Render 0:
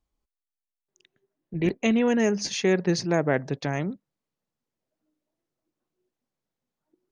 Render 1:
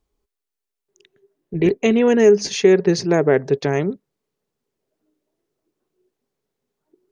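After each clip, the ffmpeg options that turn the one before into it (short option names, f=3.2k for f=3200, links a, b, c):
-filter_complex "[0:a]equalizer=f=410:w=5:g=13,asplit=2[a][b];[b]alimiter=limit=-13.5dB:level=0:latency=1:release=370,volume=-1dB[c];[a][c]amix=inputs=2:normalize=0"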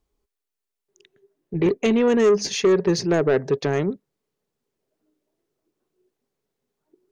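-af "asoftclip=type=tanh:threshold=-10.5dB,volume=-1dB"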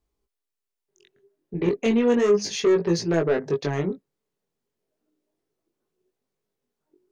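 -af "flanger=delay=18:depth=4.7:speed=0.34"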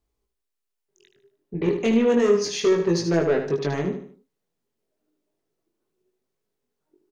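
-af "aecho=1:1:76|152|228|304:0.398|0.147|0.0545|0.0202"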